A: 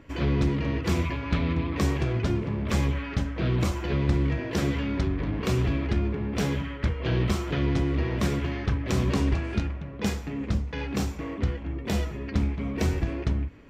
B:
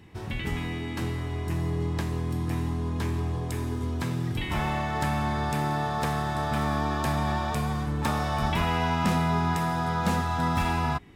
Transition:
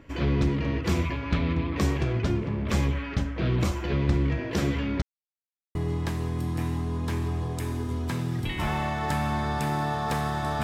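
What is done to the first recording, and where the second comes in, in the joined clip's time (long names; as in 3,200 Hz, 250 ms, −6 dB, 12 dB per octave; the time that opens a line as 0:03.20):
A
0:05.02–0:05.75: silence
0:05.75: continue with B from 0:01.67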